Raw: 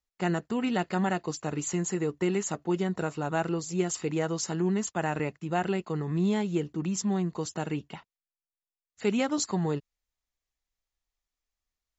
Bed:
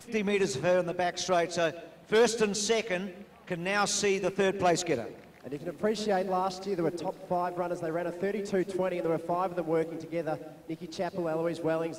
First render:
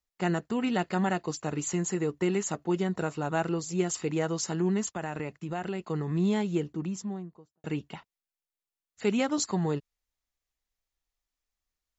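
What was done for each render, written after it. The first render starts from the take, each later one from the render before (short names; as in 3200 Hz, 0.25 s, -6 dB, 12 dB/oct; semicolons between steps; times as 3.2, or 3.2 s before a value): 4.96–5.85 compressor 2.5:1, threshold -31 dBFS; 6.48–7.64 studio fade out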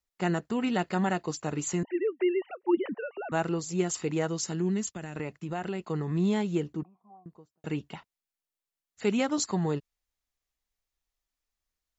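1.83–3.32 sine-wave speech; 4.27–5.15 bell 910 Hz -4 dB -> -12 dB 1.8 oct; 6.83–7.26 vocal tract filter a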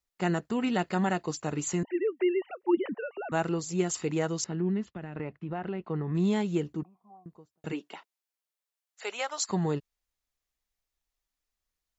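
4.44–6.15 air absorption 380 m; 7.71–9.48 HPF 260 Hz -> 680 Hz 24 dB/oct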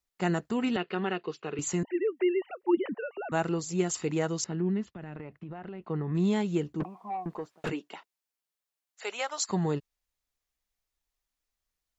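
0.76–1.59 speaker cabinet 250–3700 Hz, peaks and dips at 280 Hz -8 dB, 410 Hz +7 dB, 620 Hz -9 dB, 890 Hz -7 dB, 1900 Hz -4 dB, 2800 Hz +5 dB; 4.85–5.82 compressor, threshold -37 dBFS; 6.8–7.7 overdrive pedal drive 31 dB, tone 1700 Hz, clips at -22 dBFS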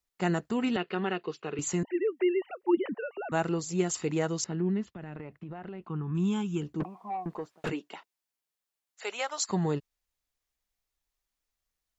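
5.87–6.62 fixed phaser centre 2900 Hz, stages 8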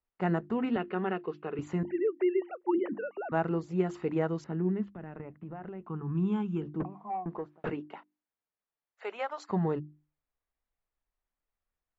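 LPF 1700 Hz 12 dB/oct; notches 50/100/150/200/250/300/350 Hz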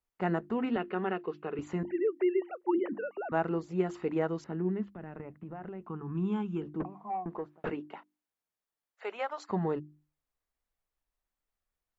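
dynamic EQ 130 Hz, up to -6 dB, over -46 dBFS, Q 1.5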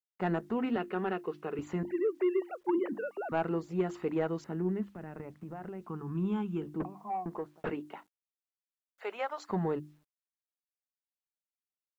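bit-crush 12-bit; soft clip -19 dBFS, distortion -23 dB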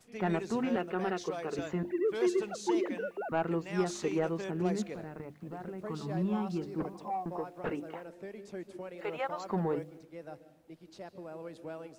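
add bed -13.5 dB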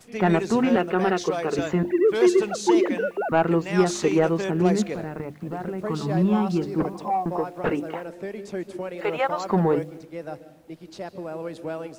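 gain +11 dB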